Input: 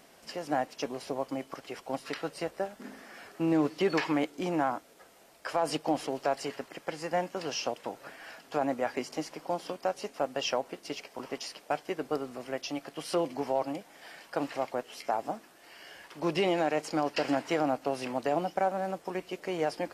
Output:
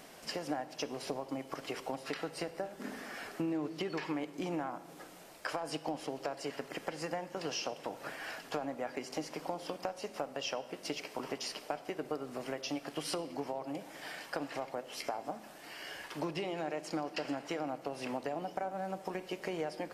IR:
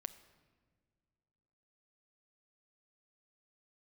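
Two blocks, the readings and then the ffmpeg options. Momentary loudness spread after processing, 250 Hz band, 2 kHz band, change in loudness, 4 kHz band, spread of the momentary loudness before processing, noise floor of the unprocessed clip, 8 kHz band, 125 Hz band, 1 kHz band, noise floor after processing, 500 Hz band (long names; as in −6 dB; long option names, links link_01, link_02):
6 LU, −6.5 dB, −4.5 dB, −6.5 dB, −3.0 dB, 13 LU, −58 dBFS, −2.5 dB, −5.5 dB, −7.5 dB, −53 dBFS, −7.0 dB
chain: -filter_complex "[0:a]acompressor=threshold=-38dB:ratio=10[link_01];[1:a]atrim=start_sample=2205[link_02];[link_01][link_02]afir=irnorm=-1:irlink=0,volume=7.5dB"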